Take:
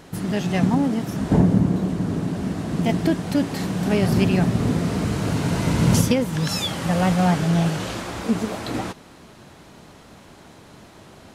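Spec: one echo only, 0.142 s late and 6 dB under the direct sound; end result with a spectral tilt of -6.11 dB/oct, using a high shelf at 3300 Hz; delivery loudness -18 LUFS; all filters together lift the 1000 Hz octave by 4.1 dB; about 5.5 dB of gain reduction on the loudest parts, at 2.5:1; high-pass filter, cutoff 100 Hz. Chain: HPF 100 Hz; bell 1000 Hz +6.5 dB; high shelf 3300 Hz -9 dB; compressor 2.5:1, threshold -21 dBFS; echo 0.142 s -6 dB; gain +6 dB

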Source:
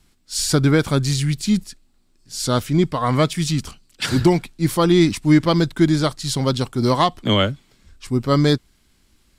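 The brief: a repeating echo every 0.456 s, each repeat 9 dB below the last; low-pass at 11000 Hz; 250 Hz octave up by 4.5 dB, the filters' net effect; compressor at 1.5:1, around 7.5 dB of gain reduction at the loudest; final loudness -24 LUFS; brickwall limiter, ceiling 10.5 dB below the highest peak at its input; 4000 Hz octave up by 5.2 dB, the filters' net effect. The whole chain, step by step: LPF 11000 Hz; bell 250 Hz +6.5 dB; bell 4000 Hz +6.5 dB; compressor 1.5:1, threshold -27 dBFS; limiter -17.5 dBFS; feedback echo 0.456 s, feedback 35%, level -9 dB; gain +3 dB

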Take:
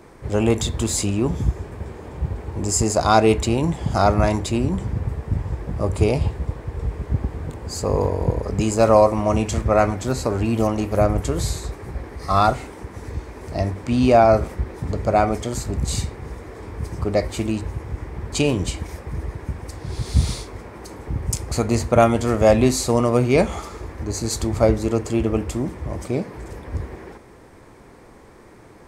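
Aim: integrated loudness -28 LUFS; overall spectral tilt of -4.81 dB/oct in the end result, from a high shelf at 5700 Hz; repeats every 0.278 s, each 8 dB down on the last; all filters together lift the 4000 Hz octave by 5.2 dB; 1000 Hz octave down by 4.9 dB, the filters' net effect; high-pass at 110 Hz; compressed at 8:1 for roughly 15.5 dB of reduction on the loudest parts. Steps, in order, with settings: HPF 110 Hz; bell 1000 Hz -8 dB; bell 4000 Hz +8.5 dB; high shelf 5700 Hz -4.5 dB; compressor 8:1, threshold -28 dBFS; feedback echo 0.278 s, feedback 40%, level -8 dB; gain +5 dB

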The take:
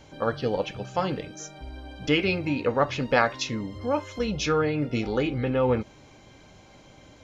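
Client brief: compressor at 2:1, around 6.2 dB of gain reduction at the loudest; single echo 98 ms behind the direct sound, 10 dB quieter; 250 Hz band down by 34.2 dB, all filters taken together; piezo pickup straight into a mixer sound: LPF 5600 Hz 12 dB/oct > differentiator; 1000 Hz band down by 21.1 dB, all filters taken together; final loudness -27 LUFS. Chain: bell 250 Hz -7.5 dB; bell 1000 Hz -5.5 dB; compressor 2:1, threshold -31 dBFS; LPF 5600 Hz 12 dB/oct; differentiator; echo 98 ms -10 dB; gain +19.5 dB

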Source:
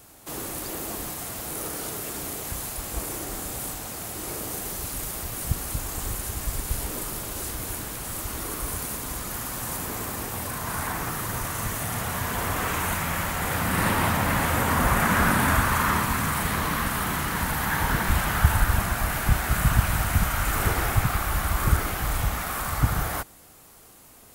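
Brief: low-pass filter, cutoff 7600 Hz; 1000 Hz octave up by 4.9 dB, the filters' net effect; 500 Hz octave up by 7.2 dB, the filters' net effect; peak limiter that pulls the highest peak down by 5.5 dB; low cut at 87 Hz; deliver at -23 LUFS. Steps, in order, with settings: HPF 87 Hz; LPF 7600 Hz; bell 500 Hz +8 dB; bell 1000 Hz +4 dB; gain +3 dB; limiter -9 dBFS

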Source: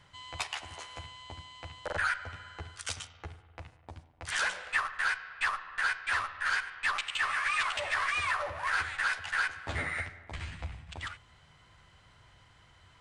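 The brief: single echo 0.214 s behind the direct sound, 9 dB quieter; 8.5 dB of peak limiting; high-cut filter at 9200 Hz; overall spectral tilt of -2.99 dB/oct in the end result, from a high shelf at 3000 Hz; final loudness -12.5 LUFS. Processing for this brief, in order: LPF 9200 Hz; high shelf 3000 Hz -5.5 dB; limiter -28.5 dBFS; echo 0.214 s -9 dB; gain +25.5 dB

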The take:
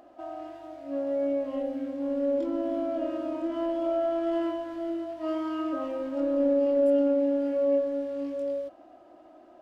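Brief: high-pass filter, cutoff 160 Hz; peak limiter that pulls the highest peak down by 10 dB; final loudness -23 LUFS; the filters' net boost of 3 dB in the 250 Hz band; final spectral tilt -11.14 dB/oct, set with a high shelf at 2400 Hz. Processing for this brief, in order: HPF 160 Hz; bell 250 Hz +4 dB; high shelf 2400 Hz +8.5 dB; gain +8 dB; limiter -15 dBFS

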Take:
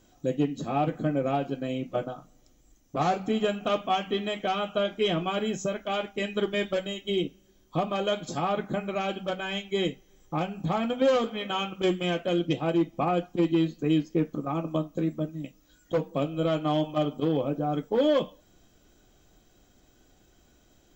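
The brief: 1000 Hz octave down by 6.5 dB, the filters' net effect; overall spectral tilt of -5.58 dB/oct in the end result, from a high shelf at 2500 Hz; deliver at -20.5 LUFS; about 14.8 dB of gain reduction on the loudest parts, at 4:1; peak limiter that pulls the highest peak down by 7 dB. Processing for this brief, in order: bell 1000 Hz -9 dB; high shelf 2500 Hz -7.5 dB; compressor 4:1, threshold -39 dBFS; gain +23.5 dB; limiter -10 dBFS

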